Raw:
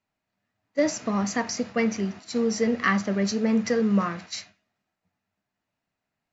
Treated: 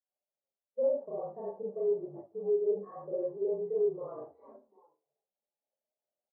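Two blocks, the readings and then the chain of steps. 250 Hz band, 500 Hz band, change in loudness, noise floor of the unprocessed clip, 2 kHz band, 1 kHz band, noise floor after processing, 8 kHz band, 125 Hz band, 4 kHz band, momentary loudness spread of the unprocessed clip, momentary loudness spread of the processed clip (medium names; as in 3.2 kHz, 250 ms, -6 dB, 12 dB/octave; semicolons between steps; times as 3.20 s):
-21.5 dB, -2.0 dB, -8.0 dB, -84 dBFS, under -40 dB, -17.5 dB, under -85 dBFS, no reading, -22.0 dB, under -40 dB, 9 LU, 13 LU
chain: frequency shift -43 Hz; in parallel at -1 dB: gain riding 0.5 s; on the sum: frequency-shifting echo 371 ms, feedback 31%, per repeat -76 Hz, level -21 dB; Schroeder reverb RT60 0.34 s, combs from 28 ms, DRR -6.5 dB; saturation -8.5 dBFS, distortion -13 dB; reverse; compression 16:1, threshold -28 dBFS, peak gain reduction 17.5 dB; reverse; Butterworth band-pass 600 Hz, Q 1.2; tilt EQ -4 dB/octave; Chebyshev shaper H 2 -28 dB, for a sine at -20.5 dBFS; spectral contrast expander 1.5:1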